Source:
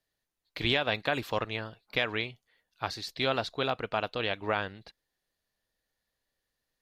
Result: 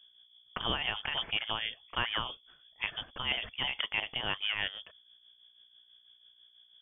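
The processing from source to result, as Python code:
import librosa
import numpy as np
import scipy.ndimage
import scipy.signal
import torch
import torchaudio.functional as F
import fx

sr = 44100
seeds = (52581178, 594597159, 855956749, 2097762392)

p1 = scipy.signal.sosfilt(scipy.signal.butter(2, 110.0, 'highpass', fs=sr, output='sos'), x)
p2 = fx.over_compress(p1, sr, threshold_db=-38.0, ratio=-1.0)
p3 = p1 + (p2 * librosa.db_to_amplitude(2.0))
p4 = fx.add_hum(p3, sr, base_hz=60, snr_db=25)
p5 = fx.freq_invert(p4, sr, carrier_hz=3400)
p6 = fx.tremolo_shape(p5, sr, shape='triangle', hz=6.1, depth_pct=60)
y = p6 * librosa.db_to_amplitude(-3.5)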